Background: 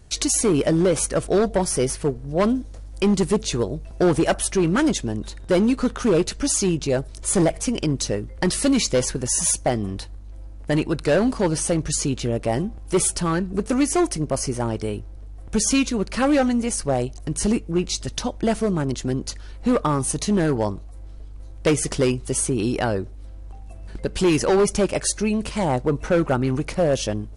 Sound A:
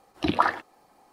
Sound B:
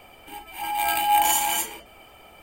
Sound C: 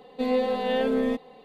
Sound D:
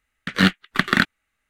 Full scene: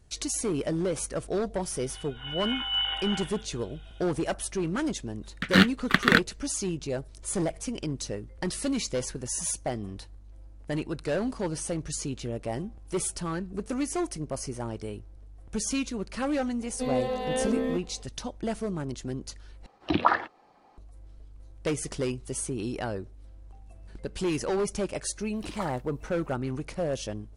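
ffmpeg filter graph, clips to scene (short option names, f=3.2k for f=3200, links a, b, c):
-filter_complex "[1:a]asplit=2[a][b];[0:a]volume=-10dB[c];[2:a]lowpass=f=3.2k:t=q:w=0.5098,lowpass=f=3.2k:t=q:w=0.6013,lowpass=f=3.2k:t=q:w=0.9,lowpass=f=3.2k:t=q:w=2.563,afreqshift=-3800[d];[a]lowpass=4.3k[e];[b]aemphasis=mode=production:type=50fm[f];[c]asplit=2[g][h];[g]atrim=end=19.664[i];[e]atrim=end=1.12,asetpts=PTS-STARTPTS,volume=-0.5dB[j];[h]atrim=start=20.776[k];[d]atrim=end=2.42,asetpts=PTS-STARTPTS,volume=-8.5dB,afade=t=in:d=0.004:c=hsin,afade=t=out:st=2.416:d=0.004:c=hsin,adelay=1630[l];[4:a]atrim=end=1.49,asetpts=PTS-STARTPTS,volume=-2.5dB,afade=t=in:d=0.004:c=hsin,afade=t=out:st=1.486:d=0.004:c=hsin,adelay=5150[m];[3:a]atrim=end=1.44,asetpts=PTS-STARTPTS,volume=-4dB,afade=t=in:d=0.004:c=hsin,afade=t=out:st=1.436:d=0.004:c=hsin,adelay=16610[n];[f]atrim=end=1.12,asetpts=PTS-STARTPTS,volume=-16.5dB,afade=t=in:d=0.004:c=hsin,afade=t=out:st=1.116:d=0.004:c=hsin,adelay=25200[o];[i][j]acrossfade=d=0.004:c1=hsin:c2=hsin[p];[p][k]acrossfade=d=0.004:c1=hsin:c2=hsin[q];[q][l][m][n][o]amix=inputs=5:normalize=0"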